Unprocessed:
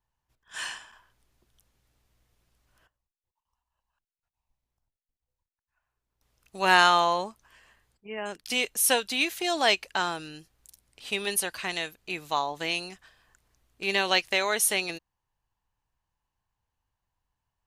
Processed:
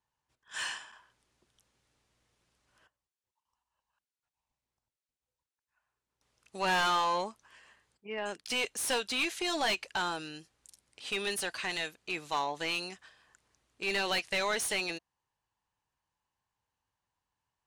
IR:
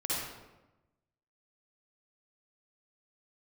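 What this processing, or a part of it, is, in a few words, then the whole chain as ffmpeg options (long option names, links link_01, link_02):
saturation between pre-emphasis and de-emphasis: -af "highpass=frequency=190:poles=1,lowpass=frequency=9900:width=0.5412,lowpass=frequency=9900:width=1.3066,highshelf=frequency=5200:gain=10.5,bandreject=frequency=690:width=19,asoftclip=type=tanh:threshold=-23.5dB,highshelf=frequency=5200:gain=-10.5"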